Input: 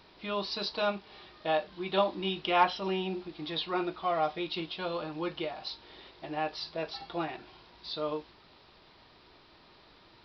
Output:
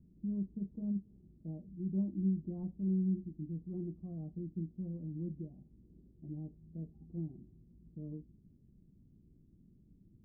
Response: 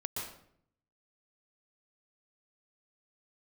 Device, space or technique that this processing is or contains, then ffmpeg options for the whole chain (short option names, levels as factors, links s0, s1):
the neighbour's flat through the wall: -af "lowpass=f=230:w=0.5412,lowpass=f=230:w=1.3066,equalizer=f=190:t=o:w=0.77:g=4.5,volume=1.41"